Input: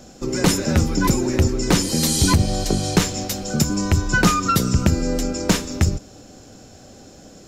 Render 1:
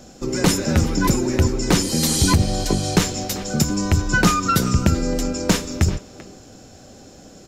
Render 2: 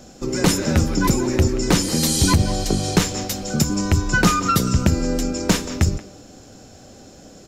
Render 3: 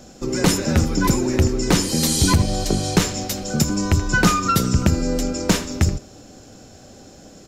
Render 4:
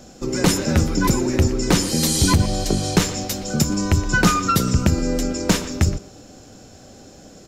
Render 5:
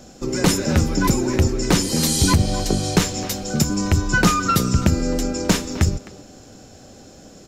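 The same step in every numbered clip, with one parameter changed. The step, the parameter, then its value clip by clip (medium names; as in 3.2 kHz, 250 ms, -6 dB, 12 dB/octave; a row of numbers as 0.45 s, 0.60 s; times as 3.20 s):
speakerphone echo, time: 390 ms, 180 ms, 80 ms, 120 ms, 260 ms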